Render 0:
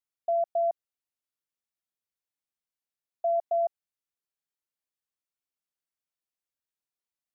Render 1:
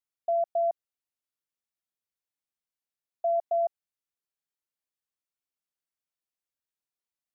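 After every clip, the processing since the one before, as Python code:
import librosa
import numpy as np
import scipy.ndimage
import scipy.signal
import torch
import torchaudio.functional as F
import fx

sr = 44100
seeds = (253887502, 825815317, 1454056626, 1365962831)

y = x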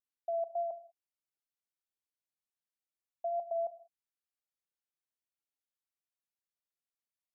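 y = fx.wow_flutter(x, sr, seeds[0], rate_hz=2.1, depth_cents=22.0)
y = fx.rev_gated(y, sr, seeds[1], gate_ms=220, shape='falling', drr_db=12.0)
y = F.gain(torch.from_numpy(y), -7.5).numpy()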